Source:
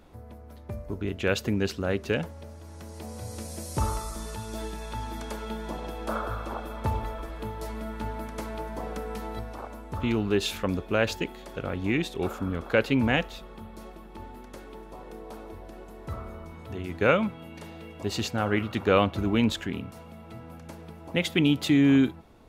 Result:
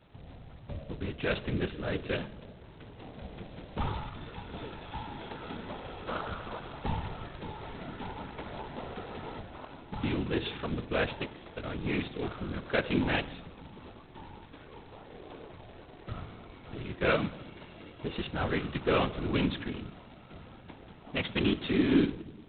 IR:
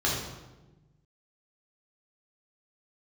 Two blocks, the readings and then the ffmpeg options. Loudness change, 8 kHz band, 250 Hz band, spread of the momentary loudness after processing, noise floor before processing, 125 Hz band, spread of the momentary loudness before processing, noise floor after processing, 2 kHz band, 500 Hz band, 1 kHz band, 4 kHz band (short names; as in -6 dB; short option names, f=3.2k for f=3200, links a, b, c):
-5.5 dB, under -35 dB, -6.0 dB, 21 LU, -46 dBFS, -5.0 dB, 21 LU, -52 dBFS, -4.0 dB, -5.5 dB, -4.5 dB, -4.5 dB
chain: -filter_complex "[0:a]asplit=2[a][b];[1:a]atrim=start_sample=2205,highshelf=f=7.9k:g=-11[c];[b][c]afir=irnorm=-1:irlink=0,volume=-25dB[d];[a][d]amix=inputs=2:normalize=0,afftfilt=real='hypot(re,im)*cos(2*PI*random(0))':imag='hypot(re,im)*sin(2*PI*random(1))':win_size=512:overlap=0.75" -ar 8000 -c:a adpcm_g726 -b:a 16k